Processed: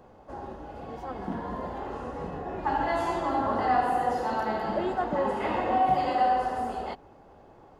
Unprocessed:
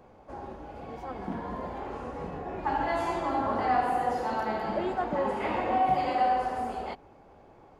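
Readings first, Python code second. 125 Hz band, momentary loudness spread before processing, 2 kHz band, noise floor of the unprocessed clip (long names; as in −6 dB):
+1.5 dB, 16 LU, +1.0 dB, −55 dBFS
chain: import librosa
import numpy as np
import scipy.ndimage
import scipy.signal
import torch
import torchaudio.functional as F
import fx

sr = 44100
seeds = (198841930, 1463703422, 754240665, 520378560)

y = fx.notch(x, sr, hz=2300.0, q=8.4)
y = F.gain(torch.from_numpy(y), 1.5).numpy()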